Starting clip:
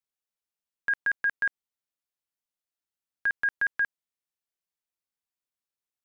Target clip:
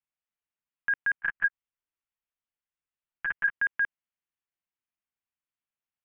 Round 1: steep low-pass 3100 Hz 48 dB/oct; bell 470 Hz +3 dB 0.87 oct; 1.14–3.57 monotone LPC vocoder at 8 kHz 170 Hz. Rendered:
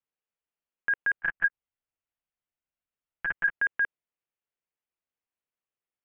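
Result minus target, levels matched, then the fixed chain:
500 Hz band +6.0 dB
steep low-pass 3100 Hz 48 dB/oct; bell 470 Hz -8.5 dB 0.87 oct; 1.14–3.57 monotone LPC vocoder at 8 kHz 170 Hz

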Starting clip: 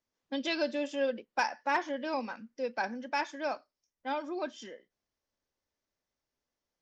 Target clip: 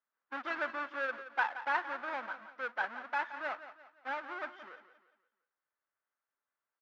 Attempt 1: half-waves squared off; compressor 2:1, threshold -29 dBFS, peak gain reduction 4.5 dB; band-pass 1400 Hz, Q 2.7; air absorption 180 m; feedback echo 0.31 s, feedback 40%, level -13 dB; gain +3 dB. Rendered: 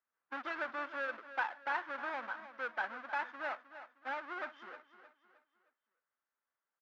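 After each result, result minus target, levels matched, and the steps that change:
echo 0.136 s late; compressor: peak gain reduction +4.5 dB
change: feedback echo 0.174 s, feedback 40%, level -13 dB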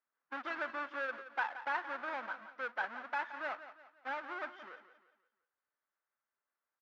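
compressor: peak gain reduction +4.5 dB
remove: compressor 2:1, threshold -29 dBFS, peak gain reduction 4.5 dB

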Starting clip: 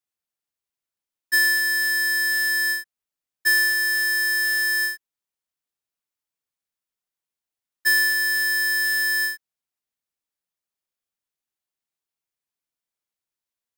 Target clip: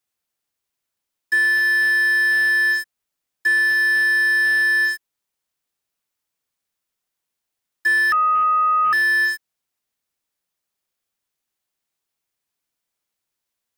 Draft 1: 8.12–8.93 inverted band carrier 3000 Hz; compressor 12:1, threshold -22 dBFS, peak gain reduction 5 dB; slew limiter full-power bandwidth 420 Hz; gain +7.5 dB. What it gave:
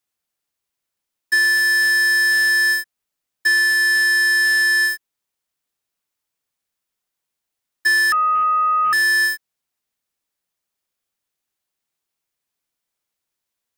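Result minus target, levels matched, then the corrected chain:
slew limiter: distortion -8 dB
8.12–8.93 inverted band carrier 3000 Hz; compressor 12:1, threshold -22 dBFS, peak gain reduction 5 dB; slew limiter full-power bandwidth 158.5 Hz; gain +7.5 dB

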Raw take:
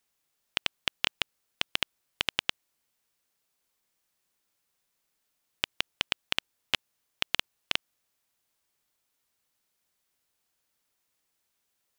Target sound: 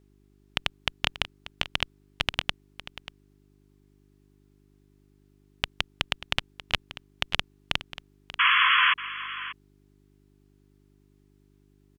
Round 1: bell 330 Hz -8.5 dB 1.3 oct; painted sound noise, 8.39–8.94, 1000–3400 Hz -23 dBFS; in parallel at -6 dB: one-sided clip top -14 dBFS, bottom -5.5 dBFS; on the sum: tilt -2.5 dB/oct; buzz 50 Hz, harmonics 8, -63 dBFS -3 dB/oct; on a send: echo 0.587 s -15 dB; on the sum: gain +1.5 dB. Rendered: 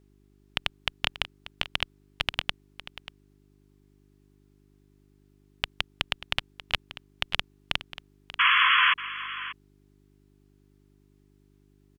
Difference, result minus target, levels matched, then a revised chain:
one-sided clip: distortion +22 dB
bell 330 Hz -8.5 dB 1.3 oct; painted sound noise, 8.39–8.94, 1000–3400 Hz -23 dBFS; in parallel at -6 dB: one-sided clip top -3.5 dBFS, bottom -5.5 dBFS; on the sum: tilt -2.5 dB/oct; buzz 50 Hz, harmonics 8, -63 dBFS -3 dB/oct; on a send: echo 0.587 s -15 dB; on the sum: gain +1.5 dB

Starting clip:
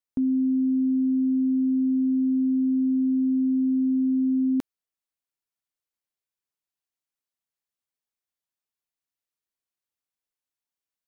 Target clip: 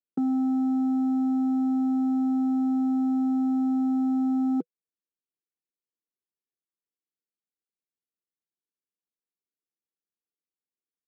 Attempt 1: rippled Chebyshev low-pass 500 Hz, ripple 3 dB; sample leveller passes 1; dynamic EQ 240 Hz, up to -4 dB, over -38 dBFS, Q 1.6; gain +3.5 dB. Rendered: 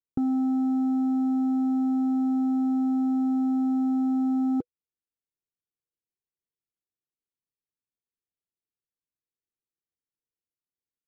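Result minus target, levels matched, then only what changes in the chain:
125 Hz band +3.5 dB
add after dynamic EQ: steep high-pass 170 Hz 48 dB/oct

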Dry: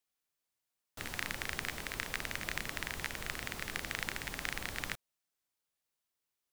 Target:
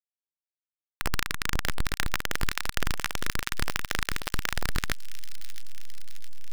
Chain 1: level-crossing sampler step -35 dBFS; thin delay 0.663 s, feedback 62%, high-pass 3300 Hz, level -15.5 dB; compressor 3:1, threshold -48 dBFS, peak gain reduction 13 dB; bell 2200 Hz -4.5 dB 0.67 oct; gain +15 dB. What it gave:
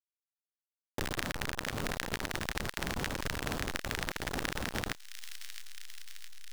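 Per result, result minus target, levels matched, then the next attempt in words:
level-crossing sampler: distortion -11 dB; compressor: peak gain reduction +6 dB
level-crossing sampler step -26 dBFS; thin delay 0.663 s, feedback 62%, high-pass 3300 Hz, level -15.5 dB; compressor 3:1, threshold -48 dBFS, peak gain reduction 13.5 dB; bell 2200 Hz -4.5 dB 0.67 oct; gain +15 dB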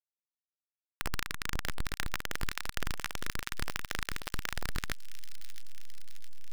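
compressor: peak gain reduction +6.5 dB
level-crossing sampler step -26 dBFS; thin delay 0.663 s, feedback 62%, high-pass 3300 Hz, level -15.5 dB; compressor 3:1, threshold -38 dBFS, peak gain reduction 7 dB; bell 2200 Hz -4.5 dB 0.67 oct; gain +15 dB

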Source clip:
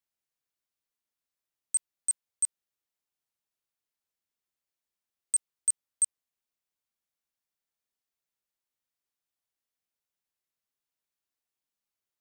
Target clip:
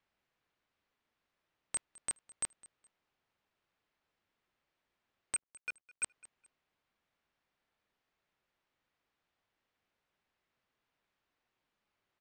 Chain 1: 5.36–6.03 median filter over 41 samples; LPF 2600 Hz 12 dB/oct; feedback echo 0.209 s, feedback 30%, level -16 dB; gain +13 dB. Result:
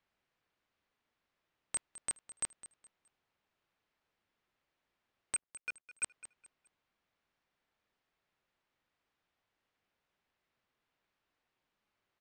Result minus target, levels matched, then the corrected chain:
echo-to-direct +6 dB
5.36–6.03 median filter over 41 samples; LPF 2600 Hz 12 dB/oct; feedback echo 0.209 s, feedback 30%, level -22 dB; gain +13 dB

